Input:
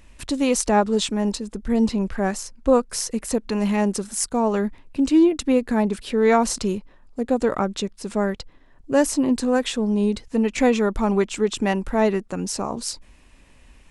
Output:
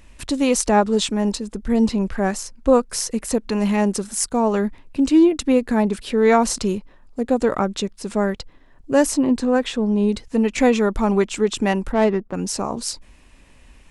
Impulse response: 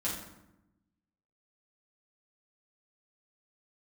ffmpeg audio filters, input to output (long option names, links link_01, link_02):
-filter_complex "[0:a]asettb=1/sr,asplit=3[link_01][link_02][link_03];[link_01]atrim=end=9.174[link_04];[link_02]atrim=start=9.17:end=10.09,asetpts=PTS-STARTPTS,afade=type=in:duration=0.004:curve=qsin,afade=type=out:start_time=0.916:duration=0.004:curve=qsin,lowpass=frequency=3400:poles=1[link_05];[link_03]atrim=start=10.086[link_06];[link_04][link_05]acrossfade=duration=0.004:curve1=hsin:curve2=qsin[link_07];[link_07][link_06]acrossfade=duration=0.004:curve1=qsin:curve2=hsin,asplit=3[link_08][link_09][link_10];[link_08]afade=type=out:start_time=11.91:duration=0.02[link_11];[link_09]adynamicsmooth=sensitivity=1.5:basefreq=1200,afade=type=in:start_time=11.91:duration=0.02,afade=type=out:start_time=12.33:duration=0.02[link_12];[link_10]afade=type=in:start_time=12.33:duration=0.02[link_13];[link_11][link_12][link_13]amix=inputs=3:normalize=0,volume=2dB"